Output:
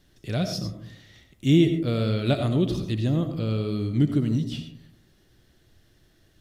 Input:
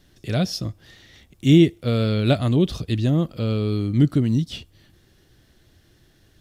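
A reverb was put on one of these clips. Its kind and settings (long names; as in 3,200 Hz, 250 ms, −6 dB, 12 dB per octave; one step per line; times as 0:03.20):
comb and all-pass reverb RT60 0.64 s, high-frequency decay 0.3×, pre-delay 45 ms, DRR 7 dB
level −4.5 dB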